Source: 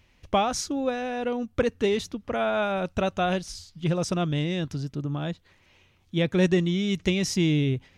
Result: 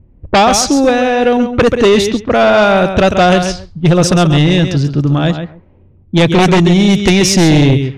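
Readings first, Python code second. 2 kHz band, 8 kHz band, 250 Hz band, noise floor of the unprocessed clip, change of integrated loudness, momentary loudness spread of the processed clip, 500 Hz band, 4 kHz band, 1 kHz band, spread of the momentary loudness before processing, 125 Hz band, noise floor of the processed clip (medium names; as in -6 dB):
+16.5 dB, +17.5 dB, +16.0 dB, -62 dBFS, +16.0 dB, 6 LU, +16.0 dB, +16.5 dB, +16.5 dB, 9 LU, +16.0 dB, -45 dBFS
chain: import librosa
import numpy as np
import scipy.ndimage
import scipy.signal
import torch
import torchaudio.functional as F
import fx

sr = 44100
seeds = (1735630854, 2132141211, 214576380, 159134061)

y = fx.echo_feedback(x, sr, ms=135, feedback_pct=16, wet_db=-9.5)
y = fx.fold_sine(y, sr, drive_db=8, ceiling_db=-10.5)
y = fx.env_lowpass(y, sr, base_hz=300.0, full_db=-13.5)
y = F.gain(torch.from_numpy(y), 6.5).numpy()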